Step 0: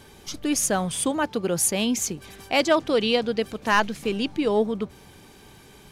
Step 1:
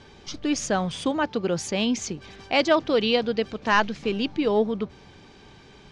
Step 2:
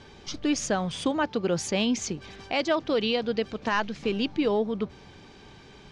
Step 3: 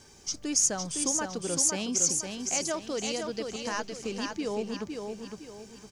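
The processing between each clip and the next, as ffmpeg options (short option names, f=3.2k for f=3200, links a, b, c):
-af "lowpass=f=5.8k:w=0.5412,lowpass=f=5.8k:w=1.3066"
-af "alimiter=limit=-16dB:level=0:latency=1:release=281"
-filter_complex "[0:a]aexciter=amount=12.6:drive=3:freq=5.4k,asplit=2[a][b];[b]aecho=0:1:510|1020|1530|2040|2550:0.562|0.208|0.077|0.0285|0.0105[c];[a][c]amix=inputs=2:normalize=0,volume=-8dB"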